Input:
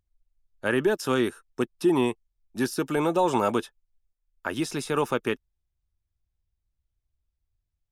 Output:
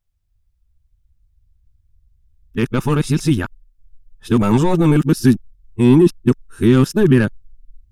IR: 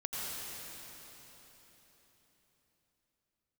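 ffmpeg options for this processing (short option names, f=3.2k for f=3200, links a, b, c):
-af "areverse,asoftclip=type=tanh:threshold=-15.5dB,asubboost=boost=12:cutoff=180,volume=6.5dB"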